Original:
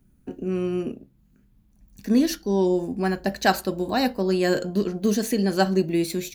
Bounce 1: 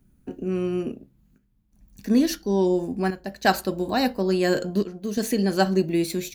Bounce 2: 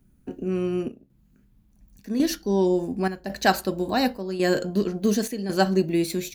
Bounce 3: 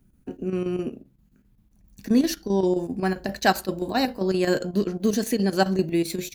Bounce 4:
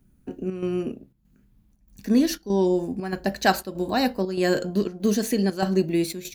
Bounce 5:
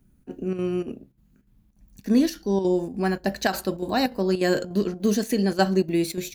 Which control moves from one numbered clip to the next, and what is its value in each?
square tremolo, rate: 0.58 Hz, 0.91 Hz, 7.6 Hz, 1.6 Hz, 3.4 Hz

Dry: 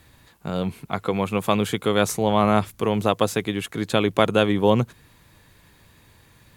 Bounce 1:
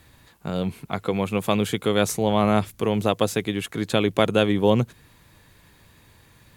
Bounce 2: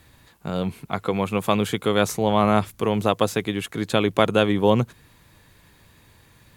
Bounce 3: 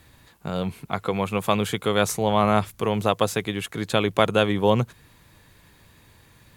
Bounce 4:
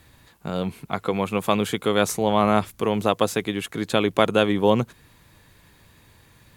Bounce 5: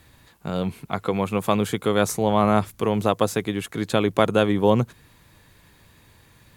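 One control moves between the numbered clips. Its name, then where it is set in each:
dynamic bell, frequency: 1.1 kHz, 9.2 kHz, 280 Hz, 110 Hz, 2.9 kHz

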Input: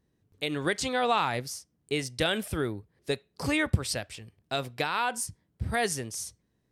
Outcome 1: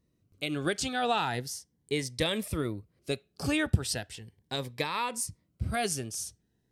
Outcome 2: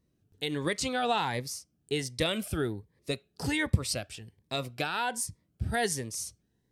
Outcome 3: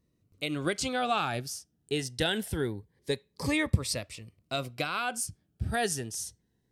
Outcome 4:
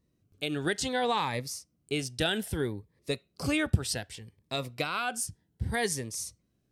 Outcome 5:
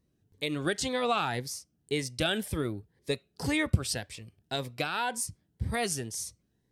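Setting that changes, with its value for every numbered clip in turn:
Shepard-style phaser, rate: 0.38 Hz, 1.3 Hz, 0.24 Hz, 0.64 Hz, 1.9 Hz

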